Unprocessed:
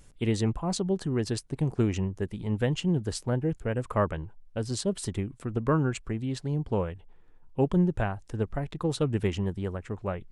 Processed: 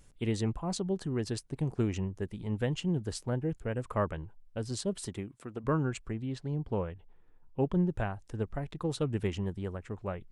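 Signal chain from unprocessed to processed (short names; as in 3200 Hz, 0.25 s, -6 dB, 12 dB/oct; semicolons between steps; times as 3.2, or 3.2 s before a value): 5.05–5.63 HPF 120 Hz -> 450 Hz 6 dB/oct; 6.14–7.89 high shelf 6500 Hz -11.5 dB; gain -4.5 dB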